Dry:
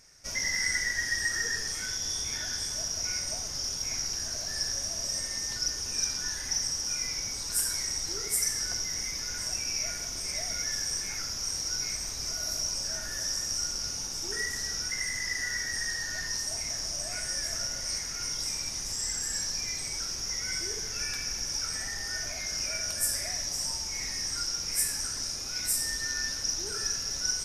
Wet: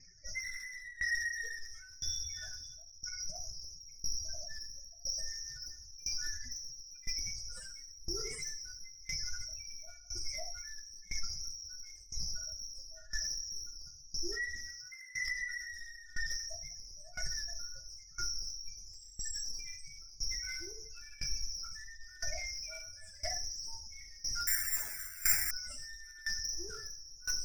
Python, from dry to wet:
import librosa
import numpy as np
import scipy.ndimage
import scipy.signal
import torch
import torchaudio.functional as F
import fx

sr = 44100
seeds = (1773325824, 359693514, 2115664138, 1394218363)

y = fx.cvsd(x, sr, bps=64000)
y = fx.spec_gate(y, sr, threshold_db=-10, keep='strong')
y = scipy.signal.sosfilt(scipy.signal.butter(2, 5100.0, 'lowpass', fs=sr, output='sos'), y)
y = fx.spec_gate(y, sr, threshold_db=-30, keep='strong')
y = fx.over_compress(y, sr, threshold_db=-41.0, ratio=-0.5, at=(2.73, 3.56), fade=0.02)
y = fx.highpass(y, sr, hz=220.0, slope=6, at=(14.66, 15.21))
y = 10.0 ** (-31.0 / 20.0) * np.tanh(y / 10.0 ** (-31.0 / 20.0))
y = fx.echo_wet_highpass(y, sr, ms=88, feedback_pct=58, hz=1800.0, wet_db=-17)
y = fx.room_shoebox(y, sr, seeds[0], volume_m3=170.0, walls='furnished', distance_m=0.84)
y = fx.resample_bad(y, sr, factor=6, down='none', up='zero_stuff', at=(24.47, 25.51))
y = fx.tremolo_decay(y, sr, direction='decaying', hz=0.99, depth_db=20)
y = F.gain(torch.from_numpy(y), 3.5).numpy()